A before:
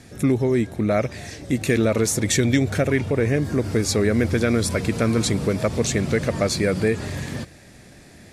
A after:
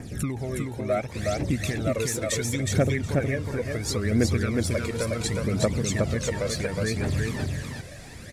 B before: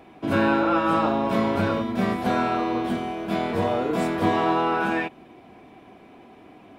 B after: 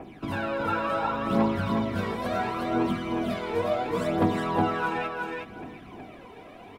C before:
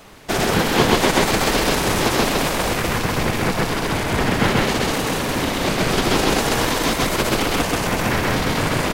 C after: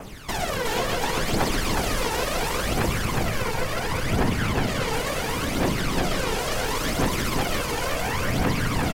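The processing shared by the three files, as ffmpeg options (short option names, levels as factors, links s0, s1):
-filter_complex "[0:a]adynamicequalizer=threshold=0.00708:dfrequency=3800:dqfactor=6.3:tfrequency=3800:tqfactor=6.3:attack=5:release=100:ratio=0.375:range=1.5:mode=cutabove:tftype=bell,acompressor=threshold=0.0251:ratio=2.5,aphaser=in_gain=1:out_gain=1:delay=2.3:decay=0.68:speed=0.71:type=triangular,asplit=2[s0][s1];[s1]aecho=0:1:365|730|1095:0.708|0.113|0.0181[s2];[s0][s2]amix=inputs=2:normalize=0"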